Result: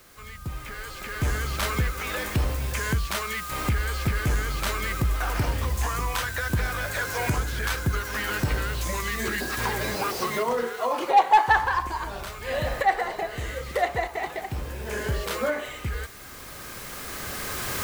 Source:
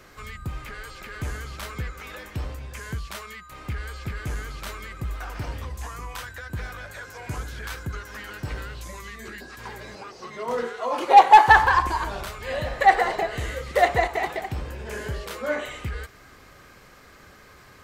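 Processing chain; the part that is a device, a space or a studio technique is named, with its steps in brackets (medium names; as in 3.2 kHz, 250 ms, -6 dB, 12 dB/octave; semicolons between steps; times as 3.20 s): cheap recorder with automatic gain (white noise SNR 25 dB; recorder AGC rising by 8.9 dB/s); trim -6 dB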